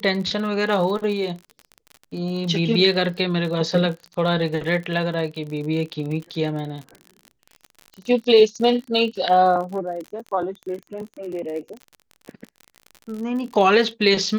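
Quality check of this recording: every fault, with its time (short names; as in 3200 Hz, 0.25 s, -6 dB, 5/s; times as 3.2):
crackle 46/s -30 dBFS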